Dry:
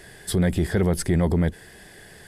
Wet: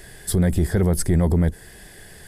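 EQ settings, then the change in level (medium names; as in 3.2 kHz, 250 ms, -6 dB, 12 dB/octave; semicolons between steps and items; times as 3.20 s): dynamic bell 2.9 kHz, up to -6 dB, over -47 dBFS, Q 1.1; bass shelf 71 Hz +11.5 dB; treble shelf 7.4 kHz +8 dB; 0.0 dB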